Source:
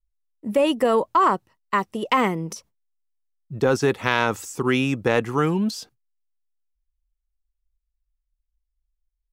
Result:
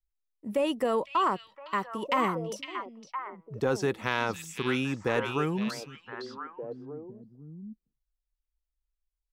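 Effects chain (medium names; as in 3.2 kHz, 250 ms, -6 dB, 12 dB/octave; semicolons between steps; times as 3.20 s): repeats whose band climbs or falls 509 ms, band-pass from 3.3 kHz, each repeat -1.4 oct, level -2.5 dB; trim -8 dB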